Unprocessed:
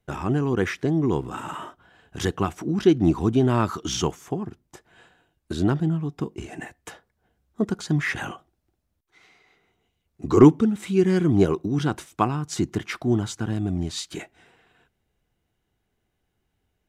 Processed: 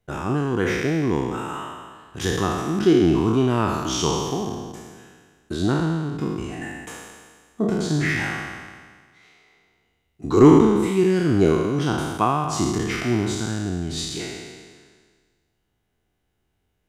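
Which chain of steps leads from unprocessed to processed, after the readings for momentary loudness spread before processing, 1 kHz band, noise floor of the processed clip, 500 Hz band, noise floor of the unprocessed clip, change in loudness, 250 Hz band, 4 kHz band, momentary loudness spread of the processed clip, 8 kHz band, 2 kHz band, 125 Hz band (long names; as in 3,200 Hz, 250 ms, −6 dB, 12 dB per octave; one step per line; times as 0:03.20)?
16 LU, +4.0 dB, −73 dBFS, +3.0 dB, −76 dBFS, +2.0 dB, +2.0 dB, +4.5 dB, 17 LU, +5.0 dB, +4.5 dB, +0.5 dB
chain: peak hold with a decay on every bin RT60 1.63 s
level −1.5 dB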